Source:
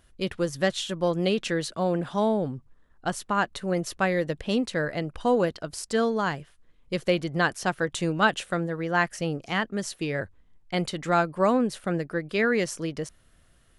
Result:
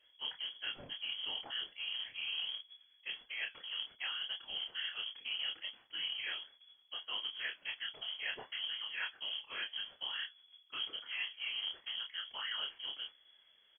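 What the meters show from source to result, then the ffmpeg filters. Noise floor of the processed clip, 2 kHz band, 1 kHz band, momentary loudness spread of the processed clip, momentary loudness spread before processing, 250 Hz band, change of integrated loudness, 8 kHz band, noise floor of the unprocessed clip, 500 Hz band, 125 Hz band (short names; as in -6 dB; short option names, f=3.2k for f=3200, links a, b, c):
-68 dBFS, -12.5 dB, -25.0 dB, 6 LU, 9 LU, under -35 dB, -12.5 dB, under -40 dB, -60 dBFS, -34.5 dB, under -35 dB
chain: -filter_complex "[0:a]areverse,acompressor=threshold=-32dB:ratio=5,areverse,afftfilt=real='hypot(re,im)*cos(2*PI*random(0))':imag='hypot(re,im)*sin(2*PI*random(1))':win_size=512:overlap=0.75,flanger=delay=5.5:depth=8.6:regen=-71:speed=0.76:shape=triangular,acrusher=bits=3:mode=log:mix=0:aa=0.000001,asplit=2[a][b];[b]adelay=28,volume=-4.5dB[c];[a][c]amix=inputs=2:normalize=0,lowpass=f=2.9k:t=q:w=0.5098,lowpass=f=2.9k:t=q:w=0.6013,lowpass=f=2.9k:t=q:w=0.9,lowpass=f=2.9k:t=q:w=2.563,afreqshift=-3400,volume=2.5dB"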